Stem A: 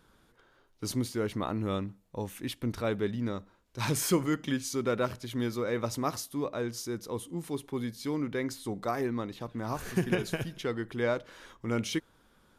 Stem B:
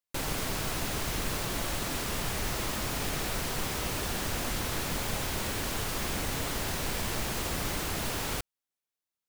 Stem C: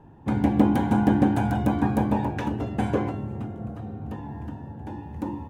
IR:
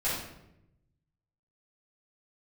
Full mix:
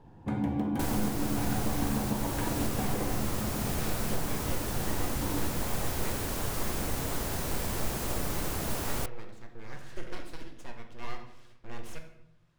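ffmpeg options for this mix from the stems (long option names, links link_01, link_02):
-filter_complex "[0:a]lowpass=7000,equalizer=frequency=360:width_type=o:width=0.28:gain=-12,aeval=exprs='abs(val(0))':channel_layout=same,volume=-10.5dB,asplit=2[link_01][link_02];[link_02]volume=-10.5dB[link_03];[1:a]equalizer=frequency=3000:width=0.51:gain=-7,adelay=650,volume=1dB[link_04];[2:a]acompressor=threshold=-24dB:ratio=6,volume=-6.5dB,asplit=2[link_05][link_06];[link_06]volume=-9.5dB[link_07];[3:a]atrim=start_sample=2205[link_08];[link_03][link_07]amix=inputs=2:normalize=0[link_09];[link_09][link_08]afir=irnorm=-1:irlink=0[link_10];[link_01][link_04][link_05][link_10]amix=inputs=4:normalize=0,alimiter=limit=-18.5dB:level=0:latency=1:release=498"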